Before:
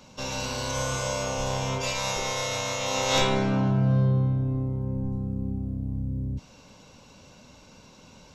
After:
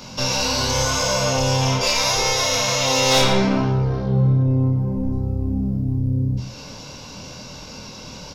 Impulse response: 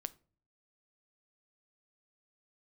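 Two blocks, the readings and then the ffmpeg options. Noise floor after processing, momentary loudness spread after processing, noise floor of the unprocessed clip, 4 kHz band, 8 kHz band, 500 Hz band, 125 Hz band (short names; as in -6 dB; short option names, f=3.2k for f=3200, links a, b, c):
-38 dBFS, 19 LU, -52 dBFS, +11.0 dB, +10.0 dB, +7.5 dB, +6.5 dB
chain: -filter_complex "[0:a]equalizer=f=125:t=o:w=0.33:g=4,equalizer=f=5k:t=o:w=0.33:g=8,equalizer=f=8k:t=o:w=0.33:g=-7,asplit=2[a][b];[b]acompressor=threshold=-37dB:ratio=6,volume=1dB[c];[a][c]amix=inputs=2:normalize=0,asoftclip=type=tanh:threshold=-17dB,flanger=delay=22.5:depth=5.8:speed=0.66,asplit=2[d][e];[e]adelay=110.8,volume=-11dB,highshelf=f=4k:g=-2.49[f];[d][f]amix=inputs=2:normalize=0,asplit=2[g][h];[1:a]atrim=start_sample=2205,highshelf=f=4.8k:g=9.5[i];[h][i]afir=irnorm=-1:irlink=0,volume=-4dB[j];[g][j]amix=inputs=2:normalize=0,volume=6dB"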